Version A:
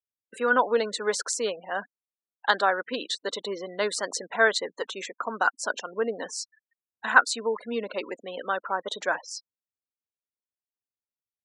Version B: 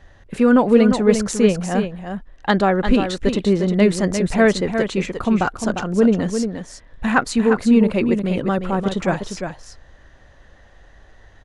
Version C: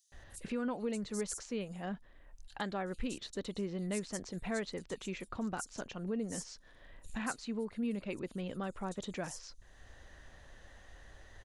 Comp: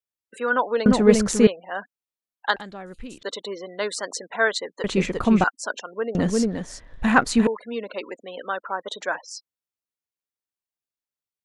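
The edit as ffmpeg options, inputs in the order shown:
-filter_complex "[1:a]asplit=3[s0][s1][s2];[0:a]asplit=5[s3][s4][s5][s6][s7];[s3]atrim=end=0.862[s8];[s0]atrim=start=0.858:end=1.472[s9];[s4]atrim=start=1.468:end=2.562[s10];[2:a]atrim=start=2.558:end=3.232[s11];[s5]atrim=start=3.228:end=4.842[s12];[s1]atrim=start=4.838:end=5.442[s13];[s6]atrim=start=5.438:end=6.152[s14];[s2]atrim=start=6.148:end=7.472[s15];[s7]atrim=start=7.468[s16];[s8][s9]acrossfade=d=0.004:c1=hsin:c2=hsin[s17];[s17][s10]acrossfade=d=0.004:c1=hsin:c2=hsin[s18];[s18][s11]acrossfade=d=0.004:c1=hsin:c2=hsin[s19];[s19][s12]acrossfade=d=0.004:c1=hsin:c2=hsin[s20];[s20][s13]acrossfade=d=0.004:c1=hsin:c2=hsin[s21];[s21][s14]acrossfade=d=0.004:c1=hsin:c2=hsin[s22];[s22][s15]acrossfade=d=0.004:c1=hsin:c2=hsin[s23];[s23][s16]acrossfade=d=0.004:c1=hsin:c2=hsin"

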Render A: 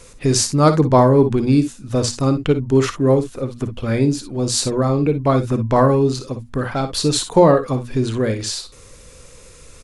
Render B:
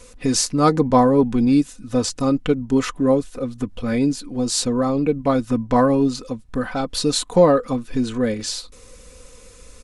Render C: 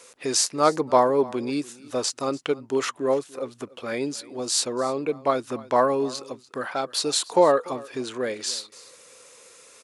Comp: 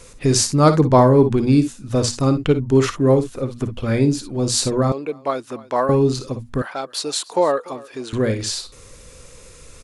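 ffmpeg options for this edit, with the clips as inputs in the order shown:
-filter_complex "[2:a]asplit=2[s0][s1];[0:a]asplit=3[s2][s3][s4];[s2]atrim=end=4.922[s5];[s0]atrim=start=4.918:end=5.892[s6];[s3]atrim=start=5.888:end=6.622[s7];[s1]atrim=start=6.618:end=8.132[s8];[s4]atrim=start=8.128[s9];[s5][s6]acrossfade=d=0.004:c1=hsin:c2=hsin[s10];[s10][s7]acrossfade=d=0.004:c1=hsin:c2=hsin[s11];[s11][s8]acrossfade=d=0.004:c1=hsin:c2=hsin[s12];[s12][s9]acrossfade=d=0.004:c1=hsin:c2=hsin"

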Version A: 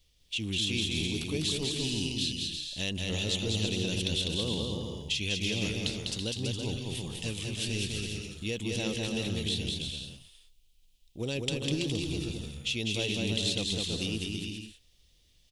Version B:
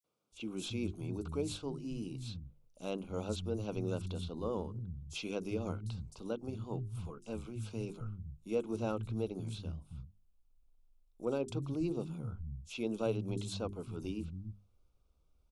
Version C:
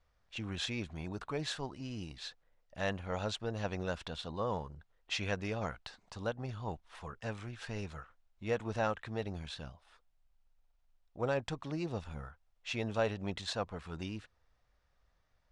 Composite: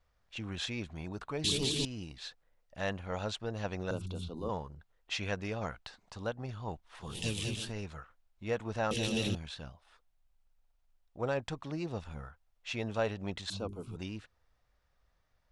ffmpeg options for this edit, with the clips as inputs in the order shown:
-filter_complex "[0:a]asplit=3[s0][s1][s2];[1:a]asplit=2[s3][s4];[2:a]asplit=6[s5][s6][s7][s8][s9][s10];[s5]atrim=end=1.442[s11];[s0]atrim=start=1.438:end=1.852[s12];[s6]atrim=start=1.848:end=3.912[s13];[s3]atrim=start=3.908:end=4.492[s14];[s7]atrim=start=4.488:end=7.23[s15];[s1]atrim=start=6.99:end=7.74[s16];[s8]atrim=start=7.5:end=8.912[s17];[s2]atrim=start=8.908:end=9.352[s18];[s9]atrim=start=9.348:end=13.502[s19];[s4]atrim=start=13.498:end=13.962[s20];[s10]atrim=start=13.958[s21];[s11][s12]acrossfade=d=0.004:c1=hsin:c2=hsin[s22];[s22][s13]acrossfade=d=0.004:c1=hsin:c2=hsin[s23];[s23][s14]acrossfade=d=0.004:c1=hsin:c2=hsin[s24];[s24][s15]acrossfade=d=0.004:c1=hsin:c2=hsin[s25];[s25][s16]acrossfade=d=0.24:c1=tri:c2=tri[s26];[s26][s17]acrossfade=d=0.24:c1=tri:c2=tri[s27];[s27][s18]acrossfade=d=0.004:c1=hsin:c2=hsin[s28];[s28][s19]acrossfade=d=0.004:c1=hsin:c2=hsin[s29];[s29][s20]acrossfade=d=0.004:c1=hsin:c2=hsin[s30];[s30][s21]acrossfade=d=0.004:c1=hsin:c2=hsin"

